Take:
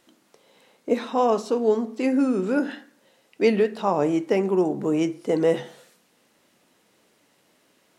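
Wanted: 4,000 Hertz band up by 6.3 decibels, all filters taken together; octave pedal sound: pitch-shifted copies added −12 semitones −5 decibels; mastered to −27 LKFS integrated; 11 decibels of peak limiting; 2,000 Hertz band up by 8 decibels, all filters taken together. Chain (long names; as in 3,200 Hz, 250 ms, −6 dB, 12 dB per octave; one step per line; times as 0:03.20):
parametric band 2,000 Hz +8.5 dB
parametric band 4,000 Hz +5 dB
brickwall limiter −16.5 dBFS
pitch-shifted copies added −12 semitones −5 dB
level −1.5 dB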